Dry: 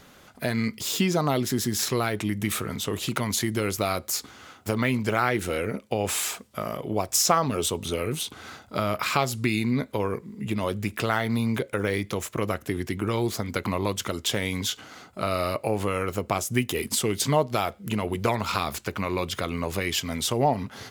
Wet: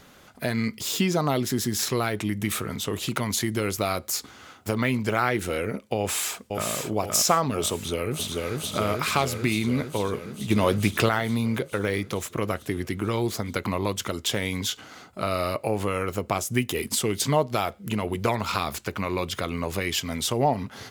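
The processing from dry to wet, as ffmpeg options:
-filter_complex "[0:a]asplit=2[a][b];[b]afade=t=in:st=5.98:d=0.01,afade=t=out:st=6.7:d=0.01,aecho=0:1:520|1040|1560|2080|2600|3120|3640:0.668344|0.334172|0.167086|0.083543|0.0417715|0.0208857|0.0104429[c];[a][c]amix=inputs=2:normalize=0,asplit=2[d][e];[e]afade=t=in:st=7.75:d=0.01,afade=t=out:st=8.6:d=0.01,aecho=0:1:440|880|1320|1760|2200|2640|3080|3520|3960|4400|4840|5280:0.841395|0.631046|0.473285|0.354964|0.266223|0.199667|0.14975|0.112313|0.0842345|0.0631759|0.0473819|0.0355364[f];[d][f]amix=inputs=2:normalize=0,asettb=1/sr,asplit=3[g][h][i];[g]atrim=end=10.504[j];[h]atrim=start=10.5:end=11.09,asetpts=PTS-STARTPTS,afade=t=in:d=0.004:c=qsin,afade=t=out:st=0.586:d=0.004:c=qsin,acontrast=56[k];[i]atrim=start=11.086[l];[j][k]acrossfade=d=0.004:c1=hsin:c2=qsin[m];[m][l]acrossfade=d=0.004:c1=qsin:c2=hsin"

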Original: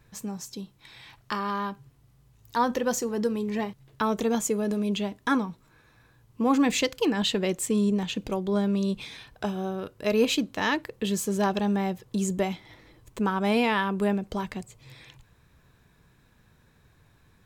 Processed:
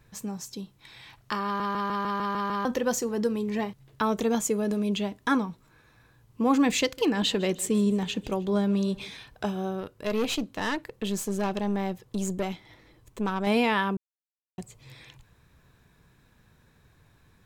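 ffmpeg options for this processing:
-filter_complex "[0:a]asettb=1/sr,asplit=3[a][b][c];[a]atrim=end=6.824[d];[b]atrim=start=6.82:end=9.1,asetpts=PTS-STARTPTS,afade=t=in:d=0.004:c=qsin,afade=t=out:st=2.276:d=0.004:c=qsin,aecho=1:1:155|310|465|620:0.0944|0.0481|0.0246|0.0125,atrim=end_sample=100548[e];[c]atrim=start=9.096[f];[d][e]acrossfade=d=0.004:c1=hsin:c2=qsin[g];[g][f]acrossfade=d=0.004:c1=qsin:c2=hsin,asettb=1/sr,asplit=3[h][i][j];[h]atrim=end=9.814[k];[i]atrim=start=9.81:end=13.47,asetpts=PTS-STARTPTS,afade=t=in:d=0.004:c=qsin,afade=t=out:st=3.656:d=0.004:c=qsin,aeval=exprs='(tanh(12.6*val(0)+0.55)-tanh(0.55))/12.6':c=same[l];[j]atrim=start=13.466[m];[k][l]acrossfade=d=0.004:c1=hsin:c2=qsin[n];[n][m]acrossfade=d=0.004:c1=qsin:c2=hsin,asplit=11[o][p][q][r][s][t][u][v][w][x][y];[o]atrim=end=1.602[z];[p]atrim=start=1.448:end=1.602[aa];[q]atrim=start=1.448:end=1.602[ab];[r]atrim=start=1.448:end=1.602[ac];[s]atrim=start=1.448:end=1.602[ad];[t]atrim=start=1.448:end=1.602[ae];[u]atrim=start=1.448:end=1.602[af];[v]atrim=start=1.448:end=1.602[ag];[w]atrim=start=2.648:end=13.97,asetpts=PTS-STARTPTS,afade=t=out:st=11.318:d=0.004:c=hsin[ah];[x]atrim=start=13.97:end=14.58,asetpts=PTS-STARTPTS,volume=0[ai];[y]atrim=start=14.58,asetpts=PTS-STARTPTS,afade=t=in:d=0.004:c=hsin[aj];[z][aa]acrossfade=d=0.004:c1=hsin:c2=hsin[ak];[ak][ab]acrossfade=d=0.004:c1=hsin:c2=hsin[al];[al][ac]acrossfade=d=0.004:c1=hsin:c2=hsin[am];[am][ad]acrossfade=d=0.004:c1=hsin:c2=hsin[an];[an][ae]acrossfade=d=0.004:c1=hsin:c2=hsin[ao];[ao][af]acrossfade=d=0.004:c1=hsin:c2=hsin[ap];[ap][ag]acrossfade=d=0.004:c1=hsin:c2=hsin[aq];[ah][ai][aj]concat=n=3:v=0:a=1[ar];[aq][ar]acrossfade=d=0.004:c1=hsin:c2=hsin"

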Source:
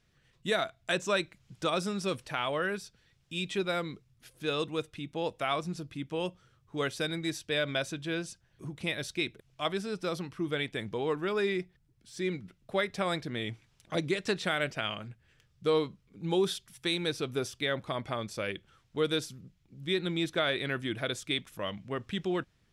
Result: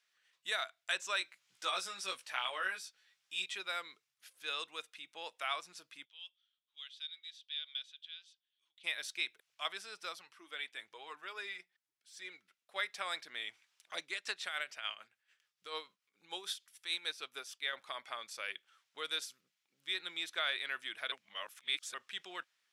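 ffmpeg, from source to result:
-filter_complex "[0:a]asettb=1/sr,asplit=3[a][b][c];[a]atrim=end=1.194[d];[b]atrim=start=1.19:end=3.46,asetpts=PTS-STARTPTS,afade=t=in:d=0.004:c=qsin,afade=t=out:st=2.266:d=0.004:c=qsin,asplit=2[e][f];[f]adelay=16,volume=-3dB[g];[e][g]amix=inputs=2:normalize=0,atrim=end_sample=100107[h];[c]atrim=start=3.456[i];[d][h]acrossfade=d=0.004:c1=hsin:c2=qsin[j];[j][i]acrossfade=d=0.004:c1=qsin:c2=hsin,asplit=3[k][l][m];[k]afade=t=out:st=6.04:d=0.02[n];[l]bandpass=f=3.4k:t=q:w=6.5,afade=t=in:st=6.04:d=0.02,afade=t=out:st=8.83:d=0.02[o];[m]afade=t=in:st=8.83:d=0.02[p];[n][o][p]amix=inputs=3:normalize=0,asettb=1/sr,asplit=3[q][r][s];[q]atrim=end=10.124[t];[r]atrim=start=10.12:end=12.76,asetpts=PTS-STARTPTS,afade=t=in:d=0.004:c=qsin,afade=t=out:st=2.636:d=0.004:c=qsin,flanger=delay=0.8:depth=3.7:regen=-53:speed=1:shape=triangular[u];[s]atrim=start=12.756[v];[t][u]acrossfade=d=0.004:c1=hsin:c2=qsin[w];[w][v]acrossfade=d=0.004:c1=qsin:c2=hsin,asettb=1/sr,asplit=3[x][y][z];[x]atrim=end=14.004[aa];[y]atrim=start=14:end=17.73,asetpts=PTS-STARTPTS,afade=t=in:d=0.004:c=qsin,afade=t=out:st=3.726:d=0.004:c=qsin,tremolo=f=6.8:d=0.61[ab];[z]atrim=start=17.726[ac];[aa][ab]acrossfade=d=0.004:c1=hsin:c2=qsin[ad];[ad][ac]acrossfade=d=0.004:c1=qsin:c2=hsin,asplit=3[ae][af][ag];[ae]atrim=end=21.122[ah];[af]atrim=start=21.118:end=21.942,asetpts=PTS-STARTPTS,areverse[ai];[ag]atrim=start=21.938[aj];[ah][ai]acrossfade=d=0.004:c1=hsin:c2=hsin[ak];[ak][aj]acrossfade=d=0.004:c1=hsin:c2=hsin,highpass=1.2k,volume=-2.5dB"

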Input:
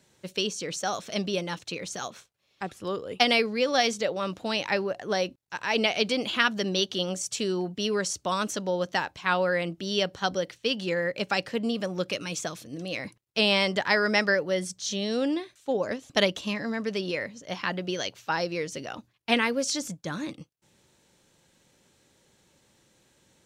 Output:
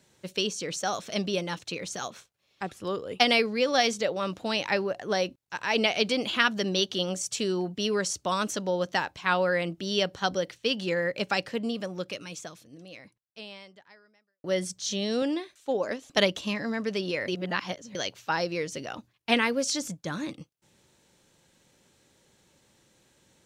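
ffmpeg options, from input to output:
-filter_complex "[0:a]asettb=1/sr,asplit=3[a][b][c];[a]atrim=end=15.224[d];[b]atrim=start=15.22:end=16.18,asetpts=PTS-STARTPTS,afade=t=in:d=0.004:c=qsin,afade=t=out:st=0.956:d=0.004:c=qsin,equalizer=f=110:w=1.1:g=-11[e];[c]atrim=start=16.176[f];[d][e]acrossfade=d=0.004:c1=hsin:c2=qsin[g];[g][f]acrossfade=d=0.004:c1=qsin:c2=hsin,asplit=4[h][i][j][k];[h]atrim=end=14.44,asetpts=PTS-STARTPTS,afade=t=out:st=11.26:d=3.18:c=qua[l];[i]atrim=start=14.44:end=17.282,asetpts=PTS-STARTPTS,afade=t=in:d=0.004:c=hsin[m];[j]atrim=start=17.278:end=17.952,asetpts=PTS-STARTPTS,areverse[n];[k]atrim=start=17.948[o];[l][m]concat=n=2:v=0:a=1[p];[p][n]acrossfade=d=0.004:c1=hsin:c2=hsin[q];[q][o]acrossfade=d=0.004:c1=hsin:c2=hsin"

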